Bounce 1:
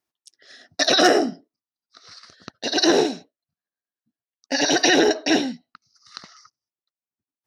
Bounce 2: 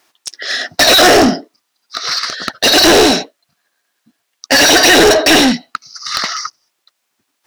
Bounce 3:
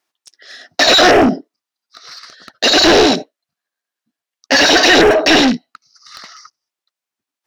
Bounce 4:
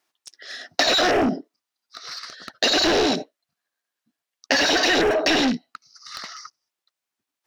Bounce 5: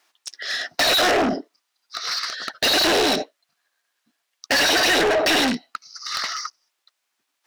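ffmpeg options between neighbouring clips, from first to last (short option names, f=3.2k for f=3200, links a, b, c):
-filter_complex "[0:a]asplit=2[a][b];[b]highpass=f=720:p=1,volume=33dB,asoftclip=type=tanh:threshold=-4.5dB[c];[a][c]amix=inputs=2:normalize=0,lowpass=f=5.9k:p=1,volume=-6dB,volume=3.5dB"
-af "afwtdn=0.178,volume=-1dB"
-af "acompressor=threshold=-18dB:ratio=6"
-filter_complex "[0:a]asplit=2[a][b];[b]highpass=f=720:p=1,volume=25dB,asoftclip=type=tanh:threshold=-4dB[c];[a][c]amix=inputs=2:normalize=0,lowpass=f=7.6k:p=1,volume=-6dB,volume=-7.5dB"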